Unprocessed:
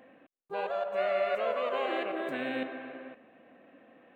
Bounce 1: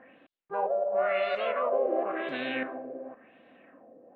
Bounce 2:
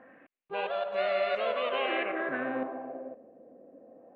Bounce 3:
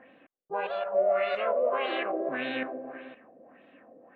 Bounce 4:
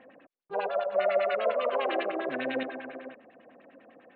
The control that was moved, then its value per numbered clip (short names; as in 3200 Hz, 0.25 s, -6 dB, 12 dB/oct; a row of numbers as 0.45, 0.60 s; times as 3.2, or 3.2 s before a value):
LFO low-pass, rate: 0.94, 0.21, 1.7, 10 Hz